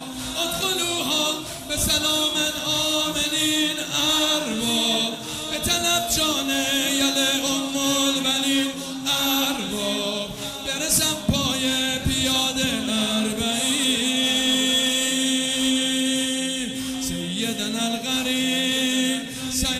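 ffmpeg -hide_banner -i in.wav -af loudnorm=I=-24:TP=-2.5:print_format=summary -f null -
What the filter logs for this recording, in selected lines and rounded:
Input Integrated:    -21.3 LUFS
Input True Peak:     -10.5 dBTP
Input LRA:             2.7 LU
Input Threshold:     -31.3 LUFS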